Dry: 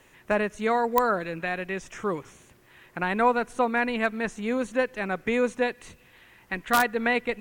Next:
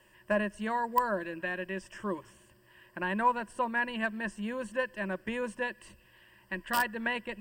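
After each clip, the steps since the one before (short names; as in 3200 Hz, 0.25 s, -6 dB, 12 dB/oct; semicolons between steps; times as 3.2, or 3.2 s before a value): ripple EQ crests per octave 1.3, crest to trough 13 dB; gain -8 dB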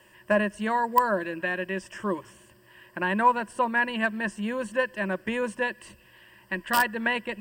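HPF 74 Hz 6 dB/oct; gain +6 dB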